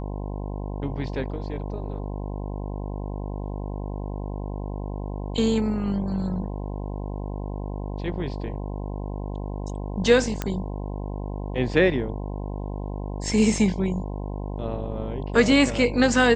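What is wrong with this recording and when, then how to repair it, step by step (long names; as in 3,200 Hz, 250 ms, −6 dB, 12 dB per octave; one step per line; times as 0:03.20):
mains buzz 50 Hz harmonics 21 −31 dBFS
0:10.42: click −11 dBFS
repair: click removal
hum removal 50 Hz, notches 21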